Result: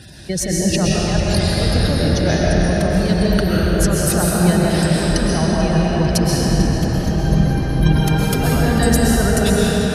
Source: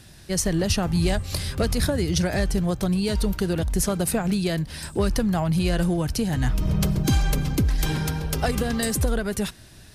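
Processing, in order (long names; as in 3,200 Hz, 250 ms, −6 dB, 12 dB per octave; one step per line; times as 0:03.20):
gate on every frequency bin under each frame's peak −25 dB strong
high-pass filter 45 Hz
compressor whose output falls as the input rises −27 dBFS, ratio −1
tape delay 444 ms, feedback 83%, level −9 dB, low-pass 4,200 Hz
comb and all-pass reverb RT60 4.1 s, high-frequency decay 0.8×, pre-delay 90 ms, DRR −5 dB
level +5.5 dB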